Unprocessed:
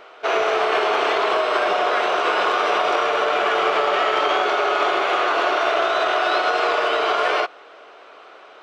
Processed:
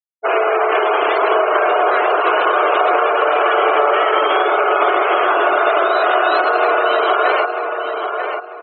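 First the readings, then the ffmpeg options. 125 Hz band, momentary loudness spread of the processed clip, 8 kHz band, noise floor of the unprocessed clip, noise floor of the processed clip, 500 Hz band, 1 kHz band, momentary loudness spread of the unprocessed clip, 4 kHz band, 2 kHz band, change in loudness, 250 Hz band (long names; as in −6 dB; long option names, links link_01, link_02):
can't be measured, 6 LU, below −40 dB, −45 dBFS, −31 dBFS, +5.5 dB, +5.5 dB, 1 LU, −1.0 dB, +4.0 dB, +4.5 dB, +5.0 dB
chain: -filter_complex "[0:a]highshelf=frequency=6900:gain=-6,afftfilt=real='re*gte(hypot(re,im),0.0891)':imag='im*gte(hypot(re,im),0.0891)':win_size=1024:overlap=0.75,asplit=2[link_01][link_02];[link_02]adelay=942,lowpass=frequency=2600:poles=1,volume=-5.5dB,asplit=2[link_03][link_04];[link_04]adelay=942,lowpass=frequency=2600:poles=1,volume=0.29,asplit=2[link_05][link_06];[link_06]adelay=942,lowpass=frequency=2600:poles=1,volume=0.29,asplit=2[link_07][link_08];[link_08]adelay=942,lowpass=frequency=2600:poles=1,volume=0.29[link_09];[link_01][link_03][link_05][link_07][link_09]amix=inputs=5:normalize=0,volume=4.5dB"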